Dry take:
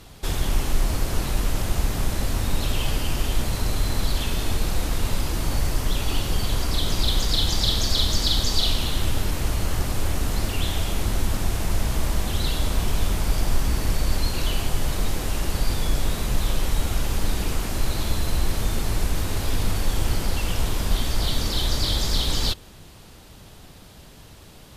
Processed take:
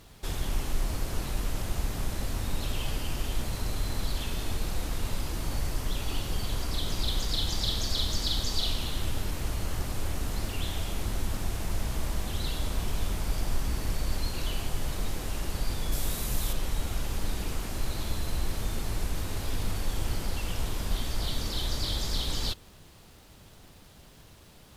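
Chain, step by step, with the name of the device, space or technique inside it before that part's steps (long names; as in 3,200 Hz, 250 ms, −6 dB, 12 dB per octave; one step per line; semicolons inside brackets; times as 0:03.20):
0:15.92–0:16.53: high-shelf EQ 7,000 Hz +12 dB
vinyl LP (surface crackle; pink noise bed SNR 35 dB)
level −7.5 dB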